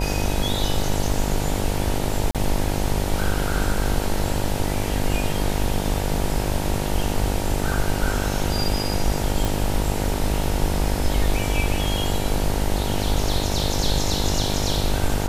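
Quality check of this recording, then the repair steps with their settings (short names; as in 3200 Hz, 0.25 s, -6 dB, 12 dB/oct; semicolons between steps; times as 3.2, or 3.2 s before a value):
buzz 50 Hz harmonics 19 -26 dBFS
2.31–2.35 gap 37 ms
9.45 pop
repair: de-click; de-hum 50 Hz, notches 19; interpolate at 2.31, 37 ms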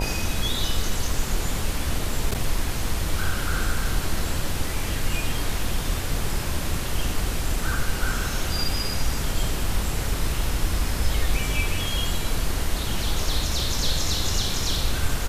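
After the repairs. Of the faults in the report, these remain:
none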